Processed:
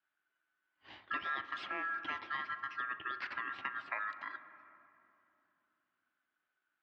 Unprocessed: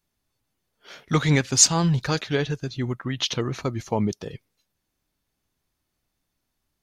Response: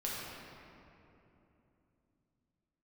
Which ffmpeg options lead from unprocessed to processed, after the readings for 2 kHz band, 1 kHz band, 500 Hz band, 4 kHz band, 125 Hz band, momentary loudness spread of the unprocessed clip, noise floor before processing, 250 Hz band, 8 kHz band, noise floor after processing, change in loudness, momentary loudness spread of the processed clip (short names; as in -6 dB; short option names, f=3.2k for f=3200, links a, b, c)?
-4.5 dB, -7.0 dB, -26.5 dB, -22.0 dB, under -40 dB, 13 LU, -79 dBFS, -30.0 dB, under -40 dB, under -85 dBFS, -16.5 dB, 14 LU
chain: -filter_complex "[0:a]aeval=exprs='val(0)*sin(2*PI*1500*n/s)':c=same,acrossover=split=260|2500[a][b][c];[a]acompressor=threshold=-52dB:ratio=4[d];[b]acompressor=threshold=-34dB:ratio=4[e];[c]acompressor=threshold=-42dB:ratio=4[f];[d][e][f]amix=inputs=3:normalize=0,highpass=130,equalizer=f=140:t=q:w=4:g=-9,equalizer=f=220:t=q:w=4:g=-8,equalizer=f=320:t=q:w=4:g=5,equalizer=f=490:t=q:w=4:g=-8,lowpass=f=3.3k:w=0.5412,lowpass=f=3.3k:w=1.3066,asplit=2[g][h];[1:a]atrim=start_sample=2205,lowpass=2.5k,adelay=40[i];[h][i]afir=irnorm=-1:irlink=0,volume=-13dB[j];[g][j]amix=inputs=2:normalize=0,volume=-4.5dB"